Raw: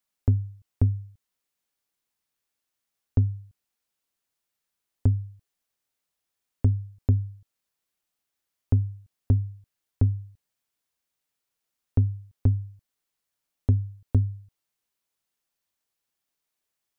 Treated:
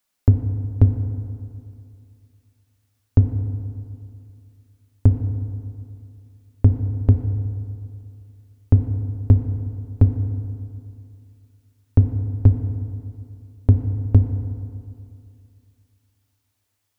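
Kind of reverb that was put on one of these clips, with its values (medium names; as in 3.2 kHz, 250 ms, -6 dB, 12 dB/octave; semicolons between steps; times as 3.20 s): FDN reverb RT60 2.5 s, low-frequency decay 1×, high-frequency decay 0.45×, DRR 6.5 dB; trim +7.5 dB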